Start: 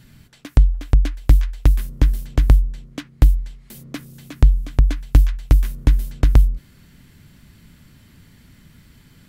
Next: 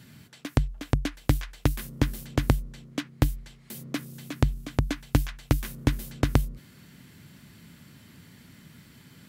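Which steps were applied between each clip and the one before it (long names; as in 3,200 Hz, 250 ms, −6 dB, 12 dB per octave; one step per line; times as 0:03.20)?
high-pass filter 120 Hz 12 dB per octave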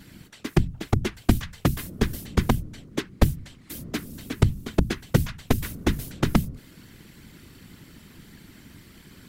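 random phases in short frames
level +3 dB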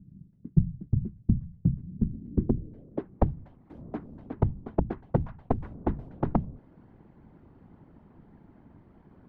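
low-pass filter sweep 170 Hz → 820 Hz, 0:01.94–0:03.14
level −6 dB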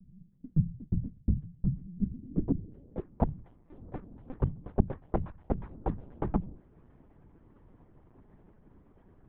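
linear-prediction vocoder at 8 kHz pitch kept
level −3.5 dB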